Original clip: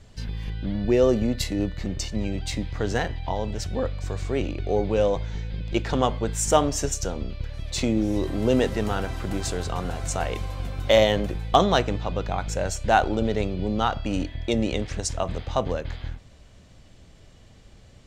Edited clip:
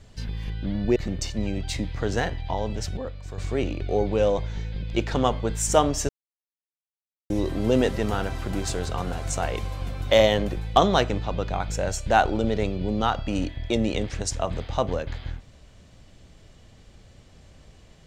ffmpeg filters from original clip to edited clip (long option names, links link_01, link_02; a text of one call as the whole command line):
ffmpeg -i in.wav -filter_complex "[0:a]asplit=6[link_01][link_02][link_03][link_04][link_05][link_06];[link_01]atrim=end=0.962[link_07];[link_02]atrim=start=1.738:end=3.752[link_08];[link_03]atrim=start=3.748:end=4.162,asetpts=PTS-STARTPTS,volume=-7dB[link_09];[link_04]atrim=start=4.158:end=6.87,asetpts=PTS-STARTPTS,afade=type=out:start_time=2.708:duration=0.004:curve=hsin[link_10];[link_05]atrim=start=6.87:end=8.08,asetpts=PTS-STARTPTS,volume=0[link_11];[link_06]atrim=start=8.08,asetpts=PTS-STARTPTS,afade=type=in:duration=0.004:curve=hsin[link_12];[link_07][link_08]acrossfade=duration=0.004:curve1=hsin:curve2=hsin[link_13];[link_13][link_09]acrossfade=duration=0.004:curve1=hsin:curve2=hsin[link_14];[link_10][link_11][link_12]concat=n=3:v=0:a=1[link_15];[link_14][link_15]acrossfade=duration=0.004:curve1=hsin:curve2=hsin" out.wav